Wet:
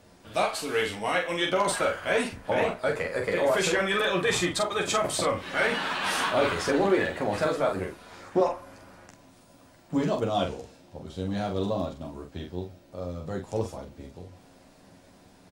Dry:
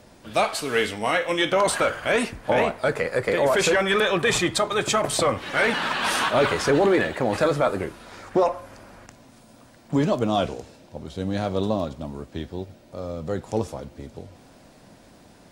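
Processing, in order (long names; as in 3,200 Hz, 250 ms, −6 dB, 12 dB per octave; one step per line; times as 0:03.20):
ambience of single reflections 11 ms −4 dB, 45 ms −4.5 dB
level −6.5 dB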